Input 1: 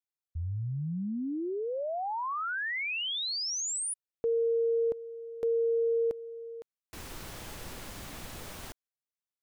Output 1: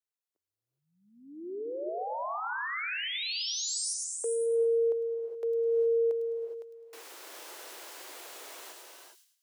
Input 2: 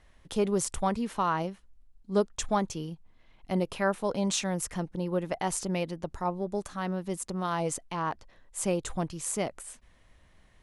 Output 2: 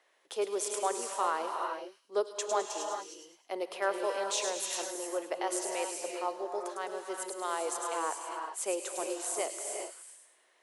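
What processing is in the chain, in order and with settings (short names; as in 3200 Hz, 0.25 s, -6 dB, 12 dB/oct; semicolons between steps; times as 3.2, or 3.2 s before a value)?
steep high-pass 360 Hz 36 dB/oct; on a send: thin delay 0.104 s, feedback 38%, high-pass 4200 Hz, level -4 dB; on the sum: non-linear reverb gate 0.44 s rising, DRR 3 dB; gain -3 dB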